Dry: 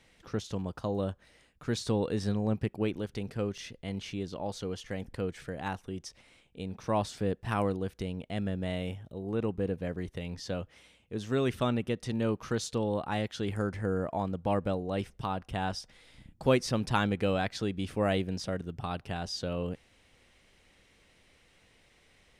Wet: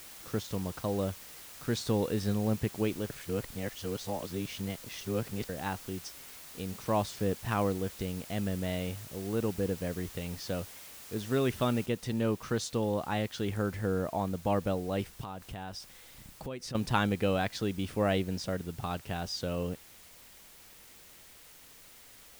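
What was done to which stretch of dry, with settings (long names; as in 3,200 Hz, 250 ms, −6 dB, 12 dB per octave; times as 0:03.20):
0:03.10–0:05.49: reverse
0:11.86: noise floor change −49 dB −55 dB
0:15.23–0:16.75: downward compressor 4 to 1, threshold −38 dBFS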